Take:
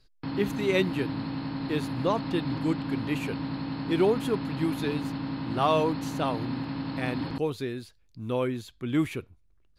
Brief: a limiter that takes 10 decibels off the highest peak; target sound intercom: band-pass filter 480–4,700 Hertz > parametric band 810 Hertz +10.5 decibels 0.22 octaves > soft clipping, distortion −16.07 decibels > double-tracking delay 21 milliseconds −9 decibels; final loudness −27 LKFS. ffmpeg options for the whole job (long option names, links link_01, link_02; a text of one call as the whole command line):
ffmpeg -i in.wav -filter_complex "[0:a]alimiter=limit=-21.5dB:level=0:latency=1,highpass=480,lowpass=4700,equalizer=frequency=810:width_type=o:width=0.22:gain=10.5,asoftclip=threshold=-25.5dB,asplit=2[link_01][link_02];[link_02]adelay=21,volume=-9dB[link_03];[link_01][link_03]amix=inputs=2:normalize=0,volume=9.5dB" out.wav